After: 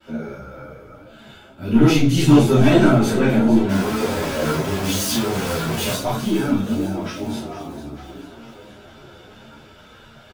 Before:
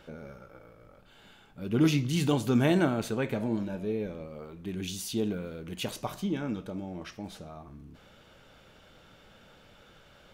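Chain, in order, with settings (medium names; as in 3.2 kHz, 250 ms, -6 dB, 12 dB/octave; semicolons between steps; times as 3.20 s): 3.69–5.92 s: one-bit comparator; expander -53 dBFS; high-pass 42 Hz; saturation -19.5 dBFS, distortion -16 dB; doubling 31 ms -3 dB; frequency-shifting echo 451 ms, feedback 59%, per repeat +36 Hz, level -13 dB; simulated room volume 210 m³, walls furnished, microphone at 2.9 m; three-phase chorus; trim +8 dB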